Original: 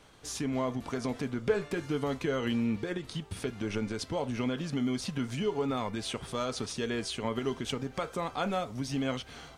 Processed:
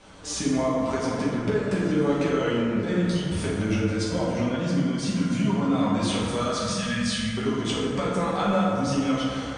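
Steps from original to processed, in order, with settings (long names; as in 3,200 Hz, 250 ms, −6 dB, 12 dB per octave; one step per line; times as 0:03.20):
0:03.89–0:06.08: notch comb filter 430 Hz
0:06.57–0:07.37: time-frequency box erased 240–1,500 Hz
downward compressor, threshold −32 dBFS, peak gain reduction 11 dB
convolution reverb RT60 2.4 s, pre-delay 5 ms, DRR −7 dB
flanger 0.79 Hz, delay 7.7 ms, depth 9.8 ms, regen −52%
Chebyshev low-pass filter 9,300 Hz, order 5
level +8 dB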